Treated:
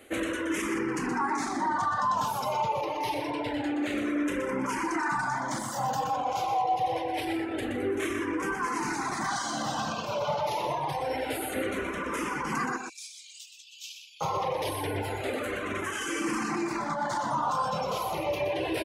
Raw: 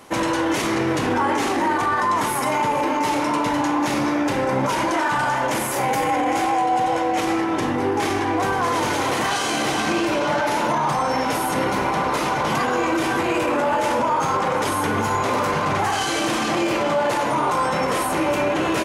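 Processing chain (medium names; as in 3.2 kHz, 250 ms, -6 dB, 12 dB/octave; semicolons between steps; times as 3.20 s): 12.77–14.21 s: steep high-pass 2.4 kHz 96 dB/octave; reverb removal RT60 1.1 s; 3.18–3.98 s: peaking EQ 11 kHz -15 dB 0.51 oct; in parallel at -11 dB: saturation -27.5 dBFS, distortion -9 dB; on the sum: echo from a far wall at 21 m, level -6 dB; barber-pole phaser -0.26 Hz; trim -6 dB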